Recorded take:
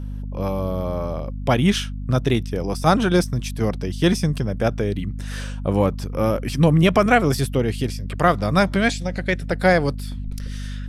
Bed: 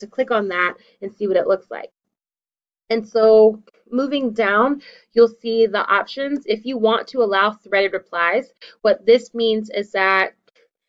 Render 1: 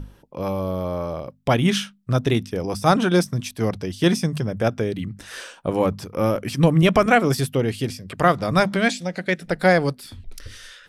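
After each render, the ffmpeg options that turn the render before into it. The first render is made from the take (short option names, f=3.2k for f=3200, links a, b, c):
-af "bandreject=f=50:t=h:w=6,bandreject=f=100:t=h:w=6,bandreject=f=150:t=h:w=6,bandreject=f=200:t=h:w=6,bandreject=f=250:t=h:w=6"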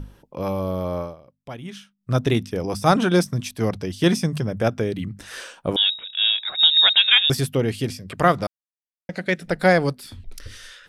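-filter_complex "[0:a]asettb=1/sr,asplit=3[a][b][c];[a]atrim=end=5.764[d];[b]atrim=start=5.76:end=7.3,asetpts=PTS-STARTPTS,afade=t=in:d=0.004:c=qsin,afade=t=out:st=1.536:d=0.004:c=qsin,lowpass=f=3.3k:t=q:w=0.5098,lowpass=f=3.3k:t=q:w=0.6013,lowpass=f=3.3k:t=q:w=0.9,lowpass=f=3.3k:t=q:w=2.563,afreqshift=-3900[e];[c]atrim=start=7.296[f];[d][e]acrossfade=d=0.004:c1=hsin:c2=qsin[g];[g][f]acrossfade=d=0.004:c1=qsin:c2=hsin,asplit=5[h][i][j][k][l];[h]atrim=end=1.16,asetpts=PTS-STARTPTS,afade=t=out:st=0.99:d=0.17:silence=0.141254[m];[i]atrim=start=1.16:end=1.98,asetpts=PTS-STARTPTS,volume=-17dB[n];[j]atrim=start=1.98:end=8.47,asetpts=PTS-STARTPTS,afade=t=in:d=0.17:silence=0.141254,afade=t=out:st=6.486:d=0.004:c=hsin[o];[k]atrim=start=8.47:end=9.09,asetpts=PTS-STARTPTS,volume=0[p];[l]atrim=start=9.09,asetpts=PTS-STARTPTS,afade=t=in:d=0.004:c=hsin[q];[m][n][o][p][q]concat=n=5:v=0:a=1"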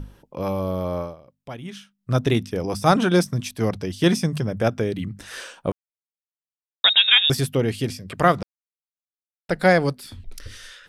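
-filter_complex "[0:a]asplit=5[a][b][c][d][e];[a]atrim=end=5.72,asetpts=PTS-STARTPTS,afade=t=out:st=5.716:d=0.004:c=hsin[f];[b]atrim=start=5.72:end=6.84,asetpts=PTS-STARTPTS,volume=0[g];[c]atrim=start=6.84:end=8.43,asetpts=PTS-STARTPTS,afade=t=in:d=0.004:c=hsin,afade=t=out:st=1.586:d=0.004:c=hsin[h];[d]atrim=start=8.43:end=9.49,asetpts=PTS-STARTPTS,volume=0[i];[e]atrim=start=9.49,asetpts=PTS-STARTPTS,afade=t=in:d=0.004:c=hsin[j];[f][g][h][i][j]concat=n=5:v=0:a=1"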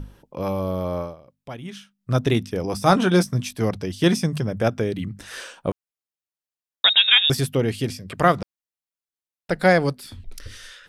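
-filter_complex "[0:a]asettb=1/sr,asplit=3[a][b][c];[a]atrim=end=2.744[d];[b]atrim=start=2.74:end=3.62,asetpts=PTS-STARTPTS,afade=t=in:d=0.004:c=qsin,afade=t=out:st=0.876:d=0.004:c=qsin,asplit=2[e][f];[f]adelay=16,volume=-10.5dB[g];[e][g]amix=inputs=2:normalize=0,atrim=end_sample=38808[h];[c]atrim=start=3.616[i];[d][h]acrossfade=d=0.004:c1=hsin:c2=qsin[j];[j][i]acrossfade=d=0.004:c1=qsin:c2=hsin"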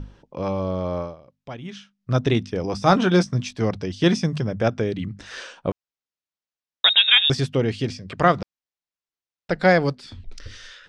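-af "lowpass=f=6.5k:w=0.5412,lowpass=f=6.5k:w=1.3066"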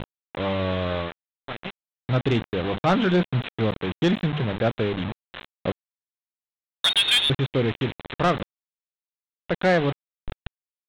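-af "aresample=8000,acrusher=bits=4:mix=0:aa=0.000001,aresample=44100,asoftclip=type=tanh:threshold=-13.5dB"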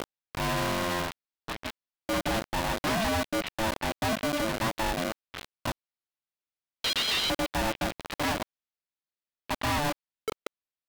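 -af "aresample=11025,asoftclip=type=hard:threshold=-26dB,aresample=44100,aeval=exprs='val(0)*sgn(sin(2*PI*440*n/s))':c=same"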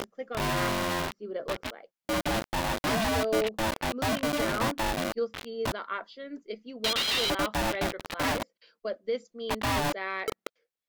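-filter_complex "[1:a]volume=-18dB[a];[0:a][a]amix=inputs=2:normalize=0"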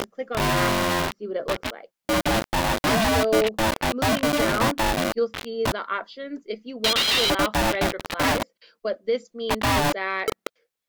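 -af "volume=6.5dB"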